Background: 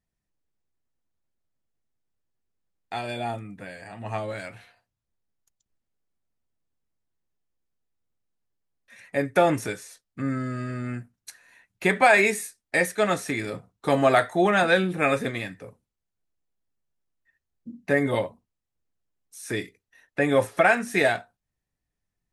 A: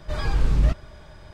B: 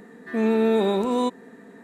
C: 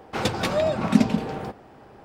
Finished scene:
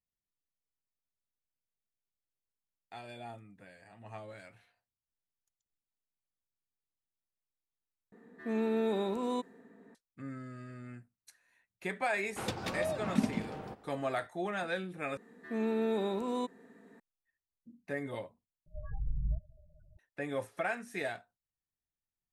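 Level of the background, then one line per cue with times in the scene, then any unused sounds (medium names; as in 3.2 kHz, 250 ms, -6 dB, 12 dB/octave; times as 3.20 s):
background -15.5 dB
8.12 s: replace with B -11 dB + tape noise reduction on one side only decoder only
12.23 s: add C -12 dB
15.17 s: replace with B -11.5 dB
18.66 s: replace with A -14.5 dB + loudest bins only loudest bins 8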